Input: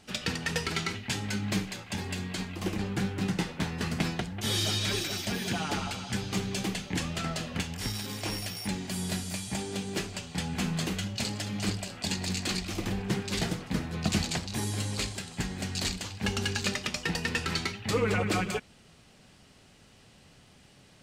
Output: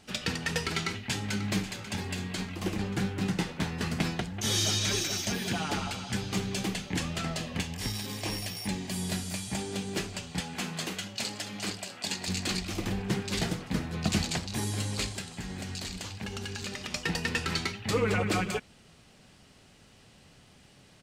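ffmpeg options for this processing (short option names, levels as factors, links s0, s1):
-filter_complex "[0:a]asplit=2[s0][s1];[s1]afade=t=in:st=0.74:d=0.01,afade=t=out:st=1.44:d=0.01,aecho=0:1:540|1080|1620|2160|2700|3240|3780:0.223872|0.134323|0.080594|0.0483564|0.0290138|0.0174083|0.010445[s2];[s0][s2]amix=inputs=2:normalize=0,asettb=1/sr,asplit=3[s3][s4][s5];[s3]atrim=end=4.394[s6];[s4]atrim=start=4.39:end=5.34,asetpts=PTS-STARTPTS,afade=t=in:d=0.004:c=qsin,afade=t=out:st=0.946:d=0.004:c=qsin,equalizer=f=6200:w=4.3:g=9[s7];[s5]atrim=start=5.336[s8];[s6][s7]acrossfade=d=0.004:c1=hsin:c2=qsin[s9];[s9][s8]acrossfade=d=0.004:c1=qsin:c2=hsin,asettb=1/sr,asplit=3[s10][s11][s12];[s10]atrim=end=7.244[s13];[s11]atrim=start=7.24:end=9.12,asetpts=PTS-STARTPTS,afade=t=in:d=0.004:c=qsin,afade=t=out:st=1.876:d=0.004:c=qsin,bandreject=f=1400:w=8.2[s14];[s12]atrim=start=9.116[s15];[s13][s14]acrossfade=d=0.004:c1=hsin:c2=qsin[s16];[s16][s15]acrossfade=d=0.004:c1=qsin:c2=hsin,asettb=1/sr,asplit=3[s17][s18][s19];[s17]atrim=end=10.404[s20];[s18]atrim=start=10.4:end=12.28,asetpts=PTS-STARTPTS,afade=t=in:d=0.004:c=qsin,afade=t=out:st=1.876:d=0.004:c=qsin,highpass=f=390:p=1[s21];[s19]atrim=start=12.276[s22];[s20][s21]acrossfade=d=0.004:c1=hsin:c2=qsin[s23];[s23][s22]acrossfade=d=0.004:c1=qsin:c2=hsin,asplit=3[s24][s25][s26];[s24]afade=t=out:st=15.36:d=0.02[s27];[s25]acompressor=threshold=0.0224:ratio=6:attack=3.2:release=140:knee=1:detection=peak,afade=t=in:st=15.36:d=0.02,afade=t=out:st=16.9:d=0.02[s28];[s26]afade=t=in:st=16.9:d=0.02[s29];[s27][s28][s29]amix=inputs=3:normalize=0"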